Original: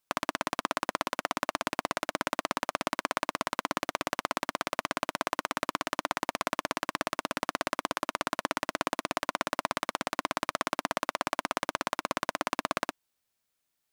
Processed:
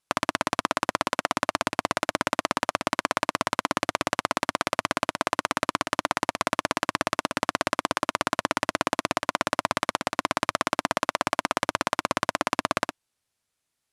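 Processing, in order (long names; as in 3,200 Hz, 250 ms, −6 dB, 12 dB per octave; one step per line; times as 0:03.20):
Butterworth low-pass 12,000 Hz 48 dB per octave
parametric band 100 Hz +6 dB 0.86 octaves
in parallel at +0.5 dB: output level in coarse steps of 16 dB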